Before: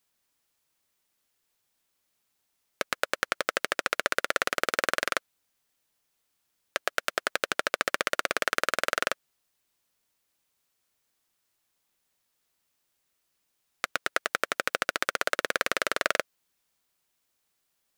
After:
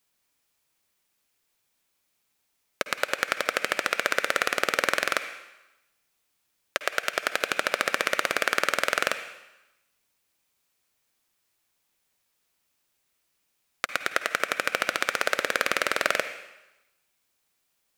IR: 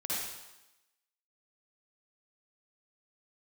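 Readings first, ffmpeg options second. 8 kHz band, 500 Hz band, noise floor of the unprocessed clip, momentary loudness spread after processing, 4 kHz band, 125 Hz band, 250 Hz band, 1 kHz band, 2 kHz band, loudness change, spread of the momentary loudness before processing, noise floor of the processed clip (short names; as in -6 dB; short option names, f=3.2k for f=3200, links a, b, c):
+2.0 dB, +2.0 dB, -77 dBFS, 8 LU, +2.5 dB, +2.0 dB, +2.0 dB, +2.0 dB, +3.0 dB, +2.5 dB, 5 LU, -75 dBFS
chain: -filter_complex "[0:a]asplit=2[a][b];[b]equalizer=f=2.4k:t=o:w=0.5:g=10[c];[1:a]atrim=start_sample=2205[d];[c][d]afir=irnorm=-1:irlink=0,volume=-15.5dB[e];[a][e]amix=inputs=2:normalize=0,volume=1dB"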